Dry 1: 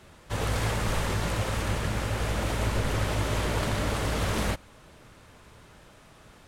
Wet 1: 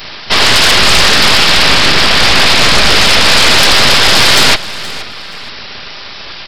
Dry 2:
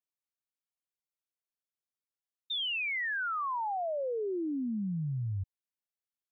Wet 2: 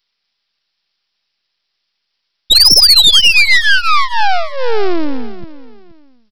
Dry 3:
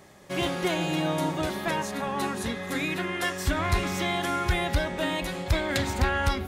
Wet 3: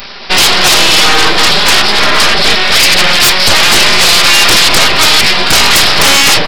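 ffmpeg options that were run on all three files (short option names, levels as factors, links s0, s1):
-af "aecho=1:1:5:0.9,aresample=11025,aeval=exprs='abs(val(0))':c=same,aresample=44100,crystalizer=i=9:c=0,aeval=exprs='0.75*sin(PI/2*5.62*val(0)/0.75)':c=same,aecho=1:1:475|950:0.141|0.0367"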